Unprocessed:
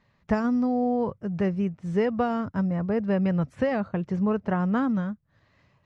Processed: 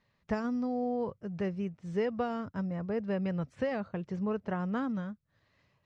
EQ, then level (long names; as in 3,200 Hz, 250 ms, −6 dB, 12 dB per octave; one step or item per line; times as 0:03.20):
high-frequency loss of the air 72 metres
parametric band 460 Hz +3 dB 0.77 octaves
high-shelf EQ 3,100 Hz +11.5 dB
−9.0 dB